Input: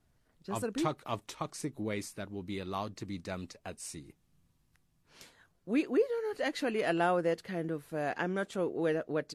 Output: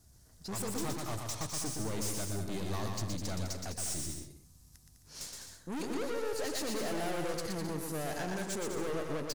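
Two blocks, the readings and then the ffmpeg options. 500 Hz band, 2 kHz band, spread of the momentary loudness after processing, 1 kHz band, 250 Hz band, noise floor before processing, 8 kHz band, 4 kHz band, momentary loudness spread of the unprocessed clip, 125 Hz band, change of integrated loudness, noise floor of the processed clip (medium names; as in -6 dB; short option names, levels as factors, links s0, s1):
-5.0 dB, -4.5 dB, 8 LU, -4.0 dB, -3.5 dB, -73 dBFS, +10.0 dB, +4.0 dB, 13 LU, +2.5 dB, -2.5 dB, -60 dBFS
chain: -filter_complex "[0:a]equalizer=f=69:t=o:w=1.3:g=10.5,asplit=2[s0][s1];[s1]alimiter=level_in=1.41:limit=0.0631:level=0:latency=1,volume=0.708,volume=0.891[s2];[s0][s2]amix=inputs=2:normalize=0,highshelf=f=4000:t=q:w=1.5:g=12,aeval=exprs='(tanh(63.1*val(0)+0.45)-tanh(0.45))/63.1':c=same,aecho=1:1:120|204|262.8|304|332.8:0.631|0.398|0.251|0.158|0.1"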